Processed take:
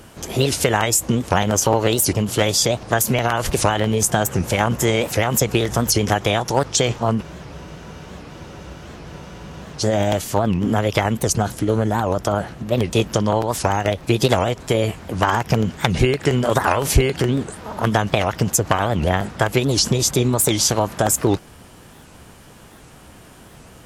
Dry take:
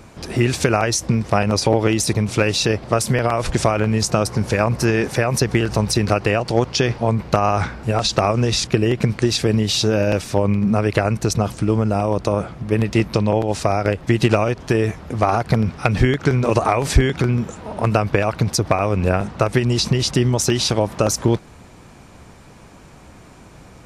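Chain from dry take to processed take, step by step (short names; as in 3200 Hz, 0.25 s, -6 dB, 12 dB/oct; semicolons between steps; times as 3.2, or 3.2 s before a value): high shelf 3900 Hz +6.5 dB; formant shift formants +4 st; spectral freeze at 7.25, 2.56 s; record warp 78 rpm, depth 250 cents; gain -1 dB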